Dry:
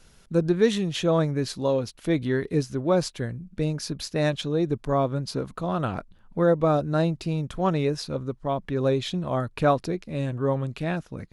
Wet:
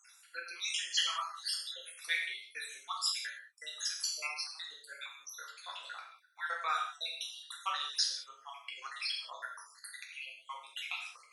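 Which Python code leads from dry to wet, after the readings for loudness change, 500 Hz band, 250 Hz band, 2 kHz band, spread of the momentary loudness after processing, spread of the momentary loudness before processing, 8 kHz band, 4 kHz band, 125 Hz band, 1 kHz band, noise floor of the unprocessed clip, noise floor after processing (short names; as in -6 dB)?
-11.5 dB, -34.5 dB, under -40 dB, -2.0 dB, 14 LU, 8 LU, +1.0 dB, +1.5 dB, under -40 dB, -10.5 dB, -56 dBFS, -62 dBFS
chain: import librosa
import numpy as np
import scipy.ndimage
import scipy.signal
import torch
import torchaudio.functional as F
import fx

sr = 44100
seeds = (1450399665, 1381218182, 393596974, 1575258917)

y = fx.spec_dropout(x, sr, seeds[0], share_pct=75)
y = scipy.signal.sosfilt(scipy.signal.butter(4, 1500.0, 'highpass', fs=sr, output='sos'), y)
y = fx.rev_gated(y, sr, seeds[1], gate_ms=220, shape='falling', drr_db=-2.5)
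y = y * 10.0 ** (3.5 / 20.0)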